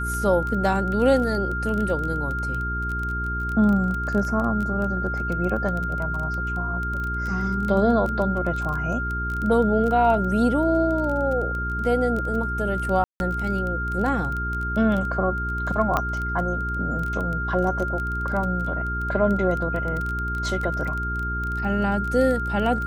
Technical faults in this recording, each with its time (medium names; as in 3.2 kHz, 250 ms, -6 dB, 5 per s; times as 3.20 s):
crackle 16 per s -26 dBFS
hum 60 Hz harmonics 7 -29 dBFS
whine 1.4 kHz -27 dBFS
13.04–13.20 s: dropout 161 ms
15.97 s: pop -9 dBFS